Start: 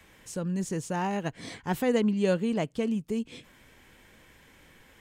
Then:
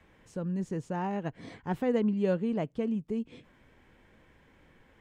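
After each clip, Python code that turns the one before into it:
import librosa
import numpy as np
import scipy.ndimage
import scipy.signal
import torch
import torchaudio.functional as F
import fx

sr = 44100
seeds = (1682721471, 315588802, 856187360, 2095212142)

y = fx.lowpass(x, sr, hz=1300.0, slope=6)
y = y * 10.0 ** (-2.0 / 20.0)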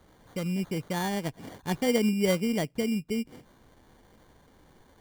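y = fx.sample_hold(x, sr, seeds[0], rate_hz=2600.0, jitter_pct=0)
y = y * 10.0 ** (2.5 / 20.0)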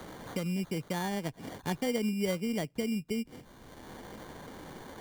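y = fx.band_squash(x, sr, depth_pct=70)
y = y * 10.0 ** (-4.0 / 20.0)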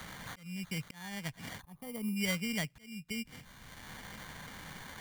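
y = fx.curve_eq(x, sr, hz=(180.0, 350.0, 2100.0, 3700.0), db=(0, -13, 7, 4))
y = fx.auto_swell(y, sr, attack_ms=486.0)
y = fx.spec_box(y, sr, start_s=1.62, length_s=0.55, low_hz=1300.0, high_hz=9000.0, gain_db=-14)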